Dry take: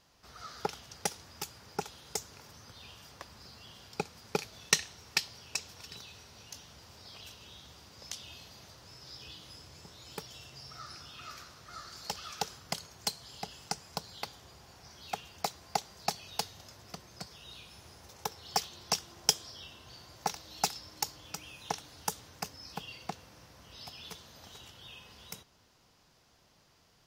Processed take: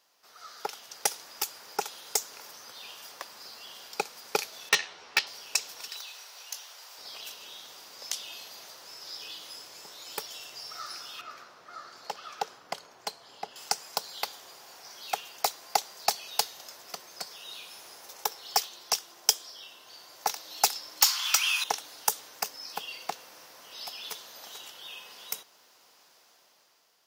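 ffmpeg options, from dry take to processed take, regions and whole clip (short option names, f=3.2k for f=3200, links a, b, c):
-filter_complex "[0:a]asettb=1/sr,asplit=3[a][b][c];[a]atrim=end=4.694[d];[b]atrim=start=4.69:end=5.27,asetpts=PTS-STARTPTS,afade=t=in:d=0.004:c=qsin,afade=t=out:st=0.576:d=0.004:c=qsin,lowpass=3.3k,asoftclip=type=hard:threshold=-19dB,asplit=2[e][f];[f]adelay=12,volume=-2dB[g];[e][g]amix=inputs=2:normalize=0,atrim=end_sample=25578[h];[c]atrim=start=5.266[i];[d][h]acrossfade=d=0.004:c1=hsin:c2=qsin[j];[j][i]acrossfade=d=0.004:c1=qsin:c2=hsin,asettb=1/sr,asplit=3[k][l][m];[k]atrim=end=5.884[n];[l]atrim=start=5.88:end=6.98,asetpts=PTS-STARTPTS,afade=t=in:d=0.004:c=qsin,afade=t=out:st=1.096:d=0.004:c=qsin,highpass=630,acrusher=bits=8:mode=log:mix=0:aa=0.000001[o];[m]atrim=start=6.976[p];[n][o]acrossfade=d=0.004:c1=hsin:c2=qsin[q];[q][p]acrossfade=d=0.004:c1=qsin:c2=hsin,asettb=1/sr,asplit=3[r][s][t];[r]atrim=end=11.214[u];[s]atrim=start=11.21:end=13.56,asetpts=PTS-STARTPTS,afade=t=in:d=0.004:c=qsin,afade=t=out:st=2.346:d=0.004:c=qsin,lowpass=f=1.2k:p=1,aeval=exprs='val(0)+0.001*(sin(2*PI*60*n/s)+sin(2*PI*2*60*n/s)/2+sin(2*PI*3*60*n/s)/3+sin(2*PI*4*60*n/s)/4+sin(2*PI*5*60*n/s)/5)':c=same[v];[t]atrim=start=13.556[w];[u][v]acrossfade=d=0.004:c1=hsin:c2=qsin[x];[x][w]acrossfade=d=0.004:c1=qsin:c2=hsin,asettb=1/sr,asplit=3[y][z][aa];[y]atrim=end=21.014[ab];[z]atrim=start=21.01:end=21.64,asetpts=PTS-STARTPTS,afade=t=in:d=0.004:c=qsin,afade=t=out:st=0.626:d=0.004:c=qsin,highpass=f=1.1k:w=0.5412,highpass=f=1.1k:w=1.3066,equalizer=f=1.8k:t=o:w=0.34:g=-4.5,asplit=2[ac][ad];[ad]highpass=f=720:p=1,volume=25dB,asoftclip=type=tanh:threshold=-13dB[ae];[ac][ae]amix=inputs=2:normalize=0,lowpass=f=5k:p=1,volume=-6dB[af];[aa]atrim=start=21.636[ag];[ab][af]acrossfade=d=0.004:c1=hsin:c2=qsin[ah];[ah][ag]acrossfade=d=0.004:c1=qsin:c2=hsin,highpass=470,dynaudnorm=f=190:g=9:m=8.5dB,highshelf=f=12k:g=12,volume=-2dB"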